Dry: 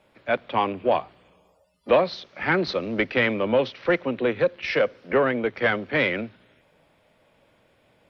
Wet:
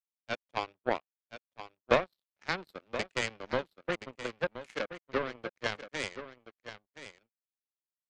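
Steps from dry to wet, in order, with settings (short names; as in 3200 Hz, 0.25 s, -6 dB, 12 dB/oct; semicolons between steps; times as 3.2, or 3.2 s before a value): power-law curve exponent 3; echo 1.024 s -12 dB; gain +1.5 dB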